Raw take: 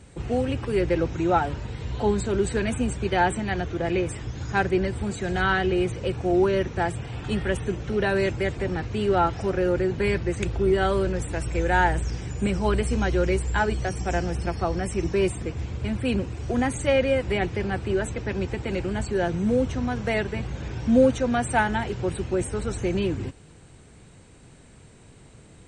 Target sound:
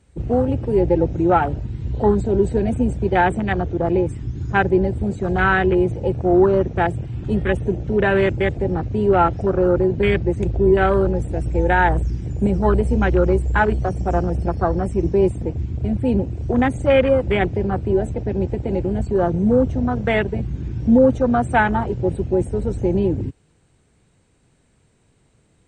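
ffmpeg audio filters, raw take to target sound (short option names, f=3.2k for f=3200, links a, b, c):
-af "afwtdn=0.0355,alimiter=level_in=10.5dB:limit=-1dB:release=50:level=0:latency=1,volume=-4dB"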